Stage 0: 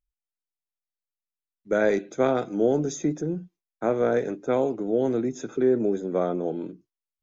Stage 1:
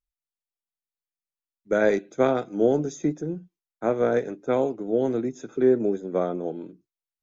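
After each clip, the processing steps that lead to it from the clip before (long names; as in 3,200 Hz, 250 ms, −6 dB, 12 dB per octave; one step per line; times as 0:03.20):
expander for the loud parts 1.5 to 1, over −34 dBFS
level +2.5 dB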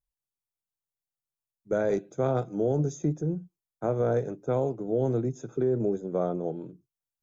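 octave-band graphic EQ 125/250/2,000/4,000 Hz +11/−6/−10/−6 dB
brickwall limiter −17 dBFS, peak gain reduction 7 dB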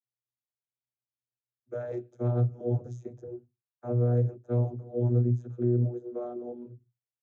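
channel vocoder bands 32, saw 121 Hz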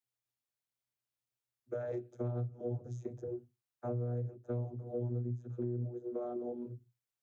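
downward compressor 5 to 1, threshold −37 dBFS, peak gain reduction 15 dB
level +1.5 dB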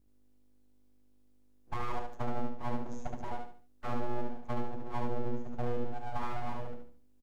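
mains hum 50 Hz, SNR 31 dB
full-wave rectification
on a send: repeating echo 72 ms, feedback 33%, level −3.5 dB
on the sum: level +4.5 dB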